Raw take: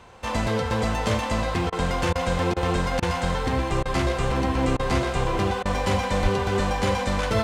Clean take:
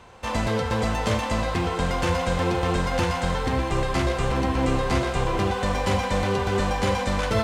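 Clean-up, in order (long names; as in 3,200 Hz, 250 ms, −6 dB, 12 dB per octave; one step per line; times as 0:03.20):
0:06.22–0:06.34: high-pass filter 140 Hz 24 dB per octave
repair the gap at 0:01.70/0:02.13/0:02.54/0:03.00/0:03.83/0:04.77/0:05.63, 23 ms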